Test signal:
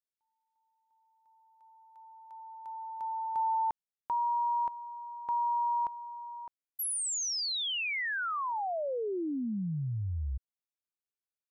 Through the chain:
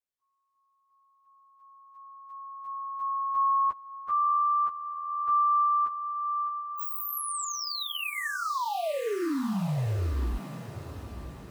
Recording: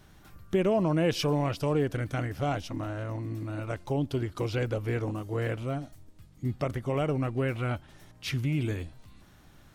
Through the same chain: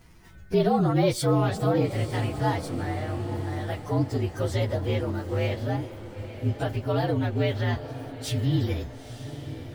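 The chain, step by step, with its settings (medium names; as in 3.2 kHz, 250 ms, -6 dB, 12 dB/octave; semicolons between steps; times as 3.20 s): frequency axis rescaled in octaves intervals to 116%; echo that smears into a reverb 924 ms, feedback 53%, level -12 dB; trim +5.5 dB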